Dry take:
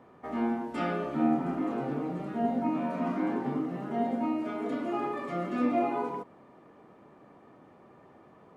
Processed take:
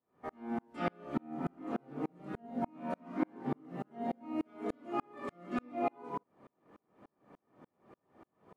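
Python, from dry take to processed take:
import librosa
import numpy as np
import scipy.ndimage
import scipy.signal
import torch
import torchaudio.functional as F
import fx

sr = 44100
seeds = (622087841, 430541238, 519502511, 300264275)

y = fx.tremolo_decay(x, sr, direction='swelling', hz=3.4, depth_db=39)
y = y * 10.0 ** (2.0 / 20.0)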